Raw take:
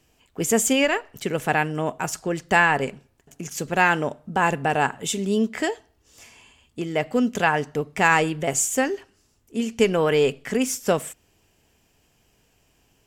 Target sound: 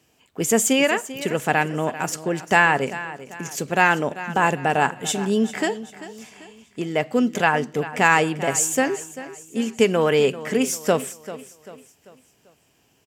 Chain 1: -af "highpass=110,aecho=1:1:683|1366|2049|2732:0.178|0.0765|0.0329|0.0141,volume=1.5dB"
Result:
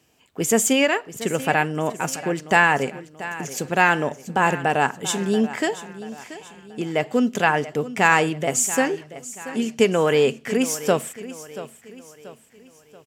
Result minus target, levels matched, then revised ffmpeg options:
echo 291 ms late
-af "highpass=110,aecho=1:1:392|784|1176|1568:0.178|0.0765|0.0329|0.0141,volume=1.5dB"

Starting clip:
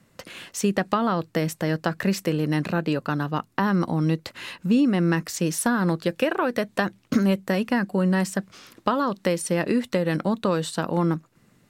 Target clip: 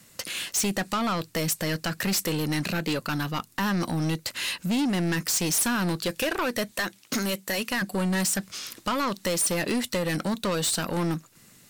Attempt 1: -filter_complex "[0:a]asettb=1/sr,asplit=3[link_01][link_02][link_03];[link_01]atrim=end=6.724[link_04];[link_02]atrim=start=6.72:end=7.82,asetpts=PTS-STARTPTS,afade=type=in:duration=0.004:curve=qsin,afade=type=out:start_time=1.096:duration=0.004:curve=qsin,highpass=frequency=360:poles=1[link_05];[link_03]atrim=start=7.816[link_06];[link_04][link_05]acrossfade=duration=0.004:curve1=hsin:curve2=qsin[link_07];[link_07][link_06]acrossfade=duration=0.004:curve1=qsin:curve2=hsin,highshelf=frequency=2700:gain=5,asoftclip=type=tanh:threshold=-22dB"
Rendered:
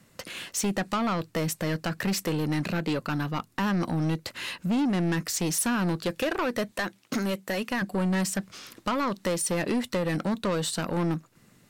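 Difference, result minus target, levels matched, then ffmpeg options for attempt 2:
4,000 Hz band −4.0 dB
-filter_complex "[0:a]asettb=1/sr,asplit=3[link_01][link_02][link_03];[link_01]atrim=end=6.724[link_04];[link_02]atrim=start=6.72:end=7.82,asetpts=PTS-STARTPTS,afade=type=in:duration=0.004:curve=qsin,afade=type=out:start_time=1.096:duration=0.004:curve=qsin,highpass=frequency=360:poles=1[link_05];[link_03]atrim=start=7.816[link_06];[link_04][link_05]acrossfade=duration=0.004:curve1=hsin:curve2=qsin[link_07];[link_07][link_06]acrossfade=duration=0.004:curve1=qsin:curve2=hsin,highshelf=frequency=2700:gain=17,asoftclip=type=tanh:threshold=-22dB"

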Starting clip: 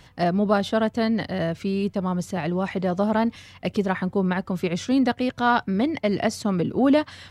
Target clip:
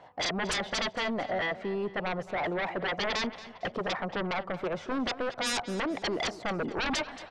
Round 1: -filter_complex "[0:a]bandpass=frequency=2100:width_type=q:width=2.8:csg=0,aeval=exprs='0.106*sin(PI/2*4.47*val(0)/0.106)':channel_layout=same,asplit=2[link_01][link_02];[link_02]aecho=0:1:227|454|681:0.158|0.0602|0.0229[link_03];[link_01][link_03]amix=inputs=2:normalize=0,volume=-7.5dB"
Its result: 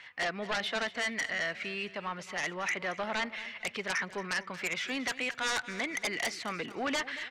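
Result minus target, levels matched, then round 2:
2,000 Hz band +3.5 dB
-filter_complex "[0:a]bandpass=frequency=710:width_type=q:width=2.8:csg=0,aeval=exprs='0.106*sin(PI/2*4.47*val(0)/0.106)':channel_layout=same,asplit=2[link_01][link_02];[link_02]aecho=0:1:227|454|681:0.158|0.0602|0.0229[link_03];[link_01][link_03]amix=inputs=2:normalize=0,volume=-7.5dB"

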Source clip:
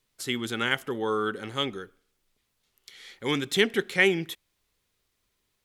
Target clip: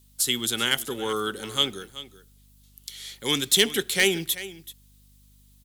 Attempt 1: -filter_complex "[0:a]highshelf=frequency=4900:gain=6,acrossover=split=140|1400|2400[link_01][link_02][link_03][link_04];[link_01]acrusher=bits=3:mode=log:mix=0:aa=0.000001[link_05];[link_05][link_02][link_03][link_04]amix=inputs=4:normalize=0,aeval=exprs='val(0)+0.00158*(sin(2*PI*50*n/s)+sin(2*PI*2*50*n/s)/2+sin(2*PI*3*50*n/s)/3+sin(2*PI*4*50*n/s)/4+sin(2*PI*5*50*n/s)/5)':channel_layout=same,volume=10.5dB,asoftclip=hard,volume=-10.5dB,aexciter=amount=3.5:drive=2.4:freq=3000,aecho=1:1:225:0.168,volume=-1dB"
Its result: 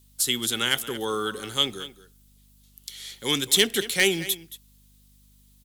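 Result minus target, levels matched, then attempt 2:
echo 156 ms early
-filter_complex "[0:a]highshelf=frequency=4900:gain=6,acrossover=split=140|1400|2400[link_01][link_02][link_03][link_04];[link_01]acrusher=bits=3:mode=log:mix=0:aa=0.000001[link_05];[link_05][link_02][link_03][link_04]amix=inputs=4:normalize=0,aeval=exprs='val(0)+0.00158*(sin(2*PI*50*n/s)+sin(2*PI*2*50*n/s)/2+sin(2*PI*3*50*n/s)/3+sin(2*PI*4*50*n/s)/4+sin(2*PI*5*50*n/s)/5)':channel_layout=same,volume=10.5dB,asoftclip=hard,volume=-10.5dB,aexciter=amount=3.5:drive=2.4:freq=3000,aecho=1:1:381:0.168,volume=-1dB"

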